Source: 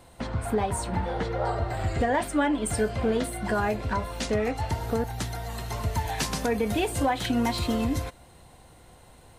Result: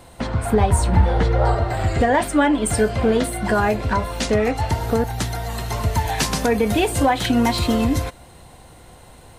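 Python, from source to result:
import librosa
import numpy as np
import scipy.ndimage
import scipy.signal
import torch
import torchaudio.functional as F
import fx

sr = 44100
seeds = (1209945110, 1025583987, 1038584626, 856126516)

y = fx.peak_eq(x, sr, hz=68.0, db=10.5, octaves=1.5, at=(0.53, 1.55))
y = y * librosa.db_to_amplitude(7.5)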